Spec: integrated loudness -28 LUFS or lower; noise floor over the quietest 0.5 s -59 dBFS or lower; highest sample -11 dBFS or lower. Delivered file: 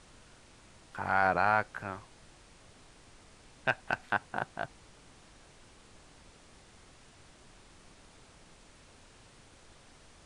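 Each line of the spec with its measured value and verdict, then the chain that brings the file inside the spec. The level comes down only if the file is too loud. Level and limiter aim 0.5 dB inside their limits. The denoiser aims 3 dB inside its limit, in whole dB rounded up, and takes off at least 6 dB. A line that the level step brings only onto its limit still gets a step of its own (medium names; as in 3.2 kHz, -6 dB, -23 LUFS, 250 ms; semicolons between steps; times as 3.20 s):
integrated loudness -32.0 LUFS: pass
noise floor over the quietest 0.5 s -57 dBFS: fail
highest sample -11.5 dBFS: pass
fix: noise reduction 6 dB, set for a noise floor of -57 dBFS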